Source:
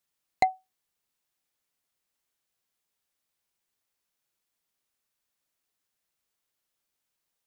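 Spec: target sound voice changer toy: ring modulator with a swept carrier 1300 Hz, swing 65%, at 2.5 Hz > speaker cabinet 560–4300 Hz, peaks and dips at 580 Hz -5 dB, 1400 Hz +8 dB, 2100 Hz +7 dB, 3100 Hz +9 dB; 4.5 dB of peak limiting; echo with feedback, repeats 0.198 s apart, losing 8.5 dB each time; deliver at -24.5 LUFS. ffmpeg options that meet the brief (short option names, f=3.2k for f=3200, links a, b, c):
-af "alimiter=limit=-14dB:level=0:latency=1,aecho=1:1:198|396|594|792:0.376|0.143|0.0543|0.0206,aeval=exprs='val(0)*sin(2*PI*1300*n/s+1300*0.65/2.5*sin(2*PI*2.5*n/s))':c=same,highpass=560,equalizer=f=580:t=q:w=4:g=-5,equalizer=f=1.4k:t=q:w=4:g=8,equalizer=f=2.1k:t=q:w=4:g=7,equalizer=f=3.1k:t=q:w=4:g=9,lowpass=f=4.3k:w=0.5412,lowpass=f=4.3k:w=1.3066,volume=4.5dB"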